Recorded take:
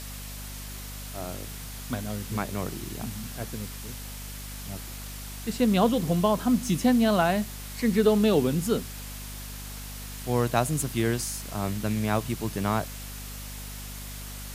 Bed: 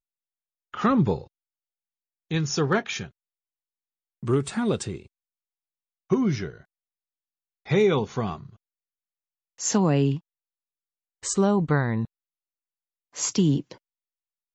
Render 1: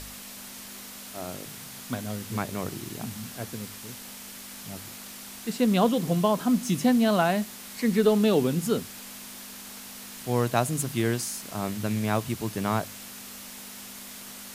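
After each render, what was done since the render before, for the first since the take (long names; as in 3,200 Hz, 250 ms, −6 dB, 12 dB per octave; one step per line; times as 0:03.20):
hum removal 50 Hz, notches 3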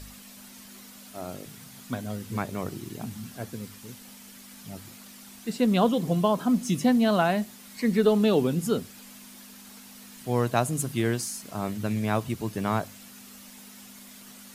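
broadband denoise 8 dB, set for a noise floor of −43 dBFS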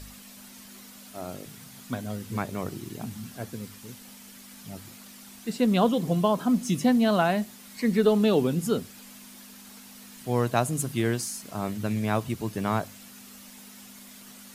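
no processing that can be heard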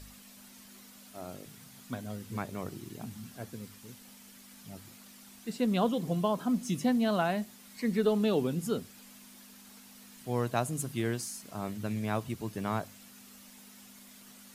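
level −6 dB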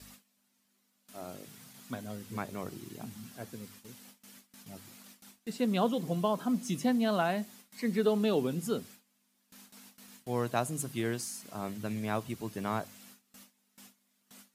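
high-pass filter 130 Hz 6 dB per octave
noise gate with hold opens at −42 dBFS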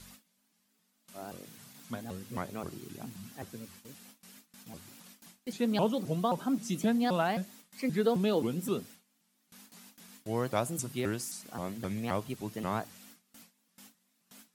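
pitch modulation by a square or saw wave saw up 3.8 Hz, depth 250 cents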